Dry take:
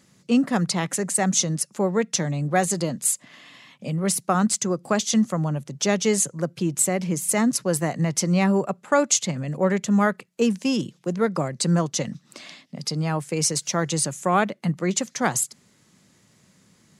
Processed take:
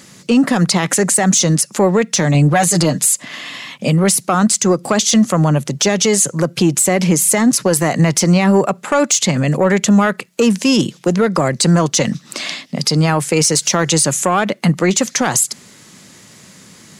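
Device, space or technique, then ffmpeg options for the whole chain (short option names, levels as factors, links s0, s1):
mastering chain: -filter_complex "[0:a]asettb=1/sr,asplit=3[s0][s1][s2];[s0]atrim=end=2.344[s3];[s1]atrim=start=2.34:end=3.06,asetpts=PTS-STARTPTS,afade=t=in:d=0.004:c=qsin,afade=t=out:st=0.716:d=0.004:c=qsin,aecho=1:1:6.6:0.93,atrim=end_sample=31752[s4];[s2]atrim=start=3.056[s5];[s3][s4]acrossfade=d=0.004:c1=hsin:c2=qsin[s6];[s6][s5]acrossfade=d=0.004:c1=qsin:c2=hsin,equalizer=f=320:t=o:w=2.3:g=3.5,acompressor=threshold=0.1:ratio=2,asoftclip=type=tanh:threshold=0.251,tiltshelf=f=840:g=-4,alimiter=level_in=8.91:limit=0.891:release=50:level=0:latency=1,volume=0.631"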